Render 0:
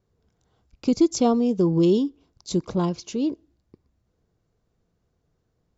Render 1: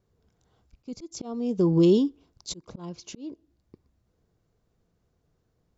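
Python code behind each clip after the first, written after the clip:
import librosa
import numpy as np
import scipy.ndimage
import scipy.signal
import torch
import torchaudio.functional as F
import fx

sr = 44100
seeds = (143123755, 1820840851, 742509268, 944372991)

y = fx.auto_swell(x, sr, attack_ms=509.0)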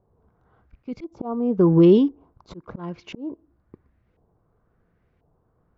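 y = fx.filter_lfo_lowpass(x, sr, shape='saw_up', hz=0.96, low_hz=820.0, high_hz=2400.0, q=2.2)
y = y * librosa.db_to_amplitude(5.0)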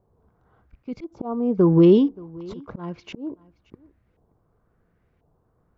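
y = x + 10.0 ** (-23.0 / 20.0) * np.pad(x, (int(576 * sr / 1000.0), 0))[:len(x)]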